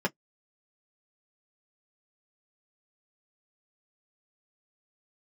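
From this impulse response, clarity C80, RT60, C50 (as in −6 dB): 57.0 dB, non-exponential decay, 37.0 dB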